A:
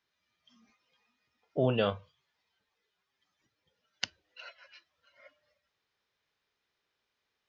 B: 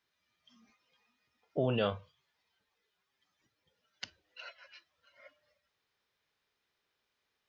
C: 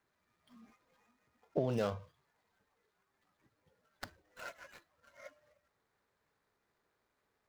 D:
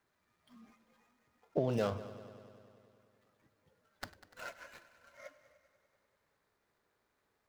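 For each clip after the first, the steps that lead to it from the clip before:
limiter -20 dBFS, peak gain reduction 10.5 dB
median filter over 15 samples; compressor 5:1, threshold -37 dBFS, peak gain reduction 10.5 dB; gain +6.5 dB
multi-head echo 98 ms, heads first and second, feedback 66%, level -19 dB; gain +1 dB

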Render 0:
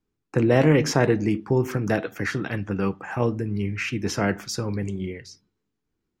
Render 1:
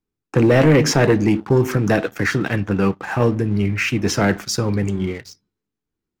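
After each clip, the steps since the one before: sample leveller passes 2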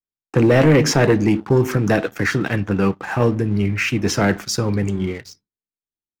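gate with hold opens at -28 dBFS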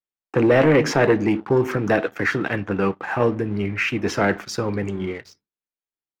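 tone controls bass -8 dB, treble -11 dB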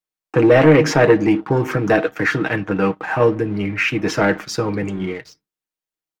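comb 6.4 ms, depth 48%; gain +2.5 dB

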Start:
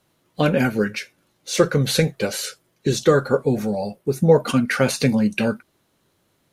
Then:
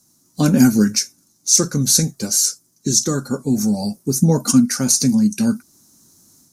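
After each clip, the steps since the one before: resonant high shelf 4300 Hz +12 dB, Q 3; AGC gain up to 7 dB; graphic EQ 250/500/2000 Hz +10/-11/-6 dB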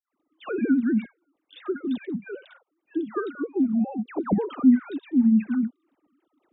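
sine-wave speech; compressor 1.5:1, threshold -30 dBFS, peak gain reduction 10 dB; dispersion lows, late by 0.105 s, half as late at 1400 Hz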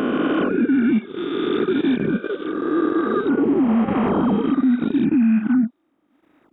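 spectral swells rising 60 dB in 2.89 s; transient shaper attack -6 dB, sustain -10 dB; limiter -19.5 dBFS, peak gain reduction 10 dB; gain +8 dB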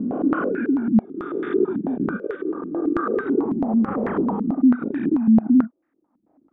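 stepped low-pass 9.1 Hz 210–1800 Hz; gain -7.5 dB

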